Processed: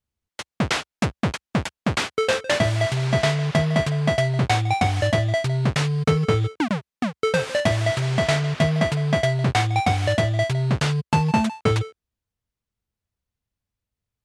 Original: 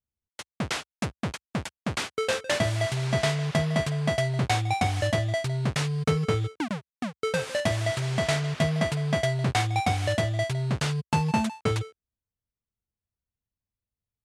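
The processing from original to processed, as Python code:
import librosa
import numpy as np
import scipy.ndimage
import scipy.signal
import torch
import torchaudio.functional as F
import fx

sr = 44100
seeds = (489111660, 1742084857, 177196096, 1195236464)

p1 = fx.high_shelf(x, sr, hz=8200.0, db=-8.5)
p2 = fx.rider(p1, sr, range_db=4, speed_s=0.5)
y = p1 + F.gain(torch.from_numpy(p2), -1.0).numpy()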